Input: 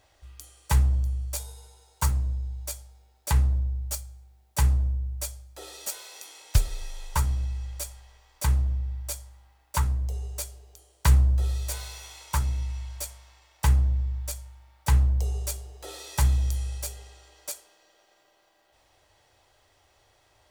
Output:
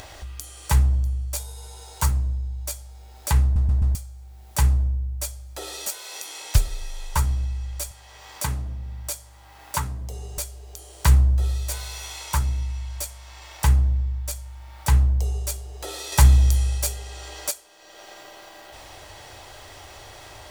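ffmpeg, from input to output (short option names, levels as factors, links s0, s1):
-filter_complex "[0:a]asettb=1/sr,asplit=3[s0][s1][s2];[s0]atrim=end=7.914[s3];[s1]atrim=start=7.91:end=10.38,asetpts=PTS-STARTPTS,afade=t=in:d=0.004:c=qsin,afade=t=out:st=2.466:d=0.004:c=qsin,highpass=110[s4];[s2]atrim=start=10.376[s5];[s3][s4]acrossfade=d=0.004:c1=hsin:c2=qsin[s6];[s6][s5]acrossfade=d=0.004:c1=qsin:c2=hsin,asettb=1/sr,asplit=3[s7][s8][s9];[s7]atrim=end=16.124[s10];[s8]atrim=start=16.12:end=17.51,asetpts=PTS-STARTPTS,afade=t=in:d=0.004:c=qsin,afade=t=out:st=1.386:d=0.004:c=qsin,acontrast=49[s11];[s9]atrim=start=17.506[s12];[s10][s11]acrossfade=d=0.004:c1=hsin:c2=qsin[s13];[s13][s12]acrossfade=d=0.004:c1=qsin:c2=hsin,asplit=5[s14][s15][s16][s17][s18];[s14]atrim=end=3.562[s19];[s15]atrim=start=3.428:end=3.562[s20];[s16]atrim=start=3.428:end=3.562[s21];[s17]atrim=start=3.428:end=3.562[s22];[s18]atrim=start=3.948[s23];[s19][s20]acrossfade=d=0.004:c1=hsin:c2=hsin[s24];[s24][s21]acrossfade=d=0.004:c1=hsin:c2=hsin[s25];[s25][s22]acrossfade=d=0.004:c1=hsin:c2=hsin[s26];[s26][s23]acrossfade=d=0.004:c1=hsin:c2=hsin,equalizer=f=500:w=7.5:g=-2.5,acompressor=mode=upward:threshold=0.0316:ratio=2.5,volume=1.41"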